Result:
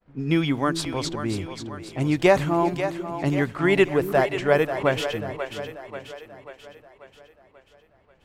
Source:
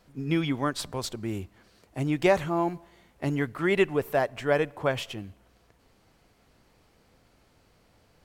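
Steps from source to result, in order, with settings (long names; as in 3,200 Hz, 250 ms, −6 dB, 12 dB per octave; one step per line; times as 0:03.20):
low-pass that shuts in the quiet parts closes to 2,100 Hz, open at −24.5 dBFS
downward expander −56 dBFS
echo with a time of its own for lows and highs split 390 Hz, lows 372 ms, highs 538 ms, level −9 dB
level +4.5 dB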